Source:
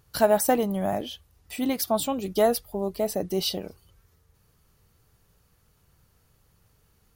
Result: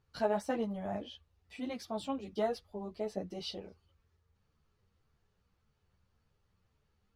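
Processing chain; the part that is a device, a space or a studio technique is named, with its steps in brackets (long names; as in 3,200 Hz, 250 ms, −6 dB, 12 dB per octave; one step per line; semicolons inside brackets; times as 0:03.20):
string-machine ensemble chorus (string-ensemble chorus; low-pass filter 4,500 Hz 12 dB per octave)
level −8 dB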